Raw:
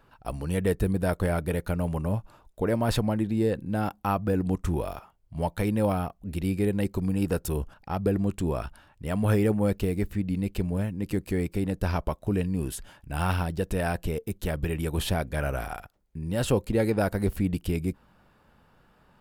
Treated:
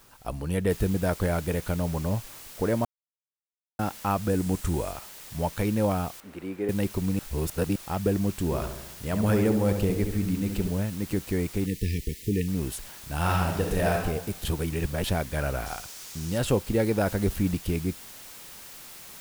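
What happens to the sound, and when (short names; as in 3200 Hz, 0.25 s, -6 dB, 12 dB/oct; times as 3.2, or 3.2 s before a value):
0.7 noise floor step -58 dB -45 dB
2.85–3.79 mute
4.29–4.92 bell 8500 Hz +5.5 dB 0.59 oct
6.2–6.69 three-band isolator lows -20 dB, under 270 Hz, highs -16 dB, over 2200 Hz
7.19–7.76 reverse
8.45–10.7 darkening echo 70 ms, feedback 60%, level -6.5 dB
11.66–12.48 brick-wall FIR band-stop 490–1700 Hz
13.17–13.95 reverb throw, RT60 0.93 s, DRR 0 dB
14.45–15.04 reverse
15.66–16.38 bell 5900 Hz +7 dB 1.2 oct
17.06–17.55 G.711 law mismatch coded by mu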